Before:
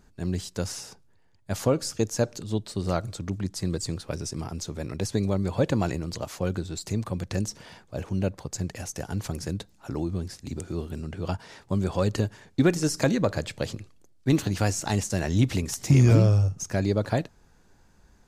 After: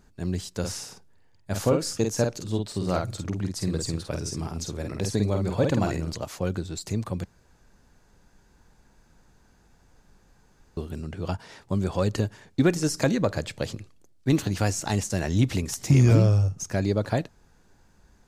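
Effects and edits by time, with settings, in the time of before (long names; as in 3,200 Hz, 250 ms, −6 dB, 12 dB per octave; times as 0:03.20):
0:00.59–0:06.13: double-tracking delay 49 ms −4.5 dB
0:07.25–0:10.77: fill with room tone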